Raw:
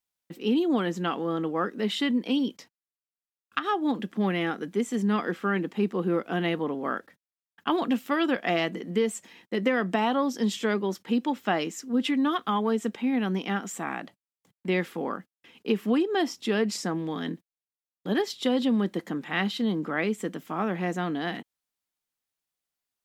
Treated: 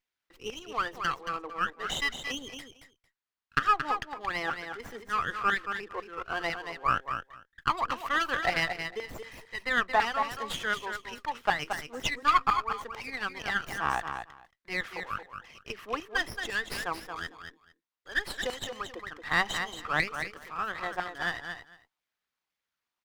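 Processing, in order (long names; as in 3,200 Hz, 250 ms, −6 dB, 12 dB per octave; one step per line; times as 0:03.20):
spectral envelope exaggerated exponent 1.5
auto-filter high-pass saw down 2 Hz 860–2,000 Hz
on a send: repeating echo 226 ms, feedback 15%, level −7.5 dB
on the sum: windowed peak hold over 5 samples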